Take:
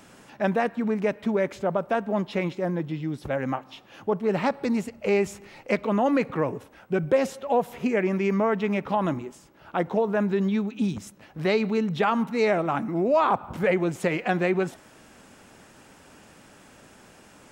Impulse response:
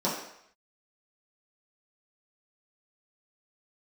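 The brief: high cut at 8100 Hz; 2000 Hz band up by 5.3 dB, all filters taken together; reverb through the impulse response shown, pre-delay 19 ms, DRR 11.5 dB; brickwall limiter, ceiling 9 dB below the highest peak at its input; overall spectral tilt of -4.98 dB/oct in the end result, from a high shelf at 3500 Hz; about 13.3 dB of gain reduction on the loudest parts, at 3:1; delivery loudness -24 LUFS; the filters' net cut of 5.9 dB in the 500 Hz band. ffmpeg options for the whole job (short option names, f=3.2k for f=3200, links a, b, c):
-filter_complex "[0:a]lowpass=8.1k,equalizer=f=500:t=o:g=-8,equalizer=f=2k:t=o:g=6,highshelf=f=3.5k:g=3,acompressor=threshold=-37dB:ratio=3,alimiter=level_in=5dB:limit=-24dB:level=0:latency=1,volume=-5dB,asplit=2[a][b];[1:a]atrim=start_sample=2205,adelay=19[c];[b][c]afir=irnorm=-1:irlink=0,volume=-22.5dB[d];[a][d]amix=inputs=2:normalize=0,volume=15.5dB"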